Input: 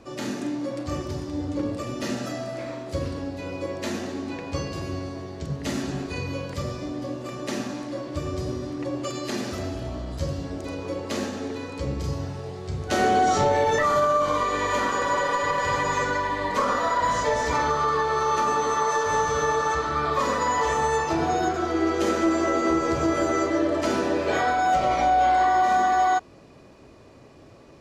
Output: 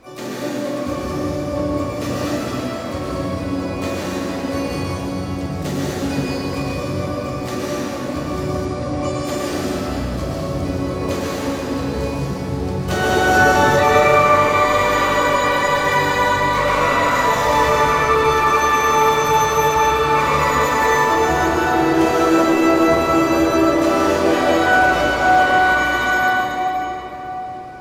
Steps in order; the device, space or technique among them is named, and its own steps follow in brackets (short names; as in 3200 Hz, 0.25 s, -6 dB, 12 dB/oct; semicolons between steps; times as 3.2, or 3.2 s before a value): shimmer-style reverb (harmoniser +12 st -7 dB; reverb RT60 4.2 s, pre-delay 0.11 s, DRR -5.5 dB); 8.65–9.25 LPF 10000 Hz 24 dB/oct